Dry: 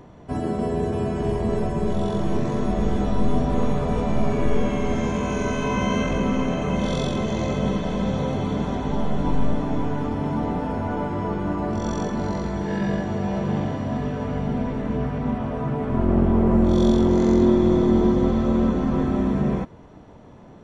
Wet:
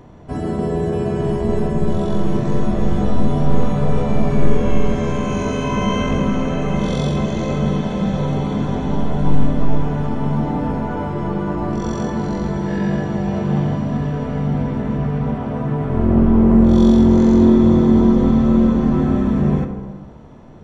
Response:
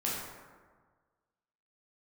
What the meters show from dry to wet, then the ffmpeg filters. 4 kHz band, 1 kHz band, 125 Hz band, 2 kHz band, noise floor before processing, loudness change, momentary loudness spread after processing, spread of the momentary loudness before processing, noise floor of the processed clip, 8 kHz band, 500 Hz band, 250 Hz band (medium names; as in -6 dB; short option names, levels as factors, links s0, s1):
+2.5 dB, +2.5 dB, +6.0 dB, +2.0 dB, -45 dBFS, +5.0 dB, 10 LU, 8 LU, -30 dBFS, no reading, +3.0 dB, +6.0 dB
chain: -filter_complex "[0:a]asplit=2[s0][s1];[1:a]atrim=start_sample=2205,lowshelf=f=130:g=11[s2];[s1][s2]afir=irnorm=-1:irlink=0,volume=0.355[s3];[s0][s3]amix=inputs=2:normalize=0,volume=0.891"